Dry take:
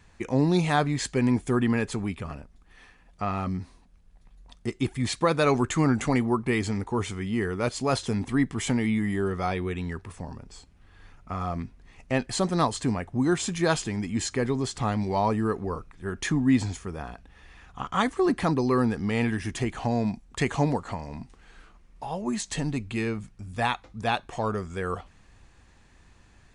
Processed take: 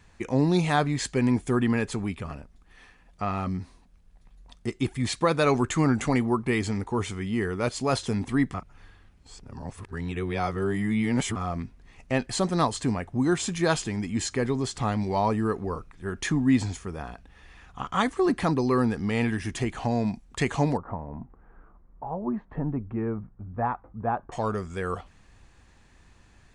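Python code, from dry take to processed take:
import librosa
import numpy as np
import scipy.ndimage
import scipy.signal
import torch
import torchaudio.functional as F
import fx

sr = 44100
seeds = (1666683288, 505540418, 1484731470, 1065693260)

y = fx.lowpass(x, sr, hz=1300.0, slope=24, at=(20.77, 24.32))
y = fx.edit(y, sr, fx.reverse_span(start_s=8.54, length_s=2.82), tone=tone)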